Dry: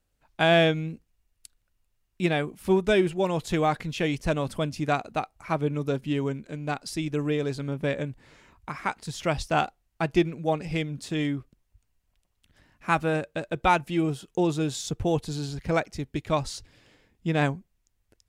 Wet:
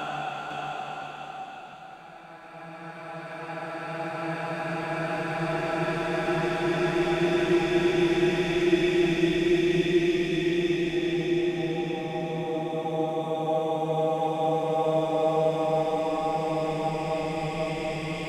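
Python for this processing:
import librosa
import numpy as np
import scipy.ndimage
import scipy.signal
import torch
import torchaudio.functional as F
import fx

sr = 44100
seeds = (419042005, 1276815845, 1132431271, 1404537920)

y = fx.paulstretch(x, sr, seeds[0], factor=19.0, window_s=0.5, from_s=9.72)
y = fx.bass_treble(y, sr, bass_db=-5, treble_db=3)
y = y + 10.0 ** (-4.5 / 20.0) * np.pad(y, (int(506 * sr / 1000.0), 0))[:len(y)]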